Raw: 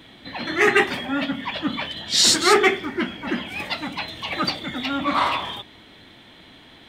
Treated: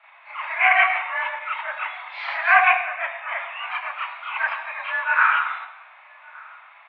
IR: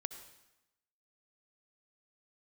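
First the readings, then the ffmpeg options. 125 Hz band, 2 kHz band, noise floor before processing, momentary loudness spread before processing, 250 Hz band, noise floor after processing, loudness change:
below −40 dB, +4.5 dB, −48 dBFS, 14 LU, below −40 dB, −49 dBFS, 0.0 dB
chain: -filter_complex "[0:a]asplit=2[link_01][link_02];[link_02]adelay=1166,volume=-23dB,highshelf=frequency=4000:gain=-26.2[link_03];[link_01][link_03]amix=inputs=2:normalize=0,asplit=2[link_04][link_05];[1:a]atrim=start_sample=2205,highshelf=frequency=5200:gain=-8.5,adelay=33[link_06];[link_05][link_06]afir=irnorm=-1:irlink=0,volume=8.5dB[link_07];[link_04][link_07]amix=inputs=2:normalize=0,highpass=frequency=480:width_type=q:width=0.5412,highpass=frequency=480:width_type=q:width=1.307,lowpass=frequency=2200:width_type=q:width=0.5176,lowpass=frequency=2200:width_type=q:width=0.7071,lowpass=frequency=2200:width_type=q:width=1.932,afreqshift=330,volume=-3.5dB"

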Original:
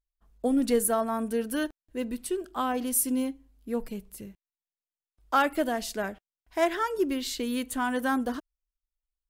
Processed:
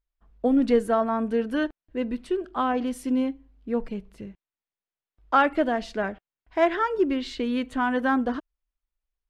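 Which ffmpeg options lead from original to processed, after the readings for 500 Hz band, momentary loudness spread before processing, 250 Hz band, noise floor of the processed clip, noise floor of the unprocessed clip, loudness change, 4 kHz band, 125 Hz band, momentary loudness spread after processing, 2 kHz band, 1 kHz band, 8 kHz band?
+4.0 dB, 12 LU, +4.0 dB, below −85 dBFS, below −85 dBFS, +3.0 dB, −1.0 dB, can't be measured, 11 LU, +3.5 dB, +4.0 dB, −17.5 dB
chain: -af "lowpass=2900,volume=4dB"

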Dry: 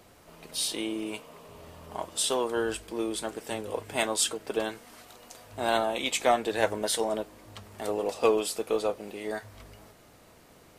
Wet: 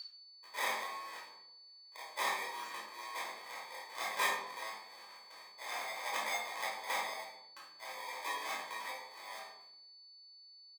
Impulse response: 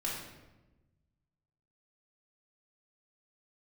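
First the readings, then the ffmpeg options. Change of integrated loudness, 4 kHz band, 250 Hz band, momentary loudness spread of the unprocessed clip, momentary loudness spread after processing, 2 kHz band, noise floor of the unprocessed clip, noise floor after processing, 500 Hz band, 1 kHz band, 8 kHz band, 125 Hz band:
−10.0 dB, −8.5 dB, −26.5 dB, 21 LU, 19 LU, −2.5 dB, −56 dBFS, −58 dBFS, −20.0 dB, −6.0 dB, −13.5 dB, below −25 dB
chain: -filter_complex "[0:a]aderivative,agate=range=-30dB:threshold=-56dB:ratio=16:detection=peak,highshelf=frequency=4200:gain=-10.5,aecho=1:1:6:0.31,asplit=2[link_01][link_02];[link_02]acompressor=threshold=-54dB:ratio=6,volume=-2dB[link_03];[link_01][link_03]amix=inputs=2:normalize=0,acrusher=samples=31:mix=1:aa=0.000001,aeval=exprs='val(0)+0.00562*sin(2*PI*4500*n/s)':channel_layout=same,highpass=frequency=1200:width_type=q:width=2.2,aecho=1:1:23|33:0.447|0.376[link_04];[1:a]atrim=start_sample=2205,asetrate=70560,aresample=44100[link_05];[link_04][link_05]afir=irnorm=-1:irlink=0,volume=6.5dB"

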